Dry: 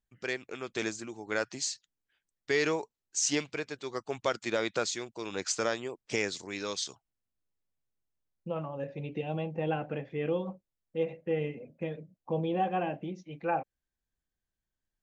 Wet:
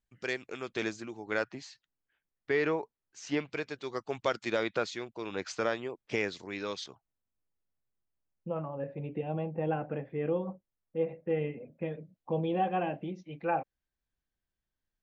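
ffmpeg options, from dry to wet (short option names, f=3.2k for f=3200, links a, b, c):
-af "asetnsamples=n=441:p=0,asendcmd='0.69 lowpass f 4400;1.44 lowpass f 2200;3.51 lowpass f 5200;4.63 lowpass f 3300;6.86 lowpass f 1800;11.3 lowpass f 2700;12.01 lowpass f 4700',lowpass=8.4k"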